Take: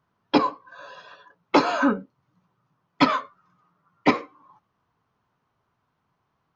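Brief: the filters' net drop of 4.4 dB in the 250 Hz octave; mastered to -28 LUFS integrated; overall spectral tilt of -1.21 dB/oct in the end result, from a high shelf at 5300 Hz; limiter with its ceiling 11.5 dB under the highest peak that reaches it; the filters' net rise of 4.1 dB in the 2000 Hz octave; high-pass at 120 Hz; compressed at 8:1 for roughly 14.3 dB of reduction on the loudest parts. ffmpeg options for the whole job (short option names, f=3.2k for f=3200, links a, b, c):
-af "highpass=120,equalizer=f=250:t=o:g=-5,equalizer=f=2k:t=o:g=6,highshelf=f=5.3k:g=-4.5,acompressor=threshold=-28dB:ratio=8,volume=11dB,alimiter=limit=-14.5dB:level=0:latency=1"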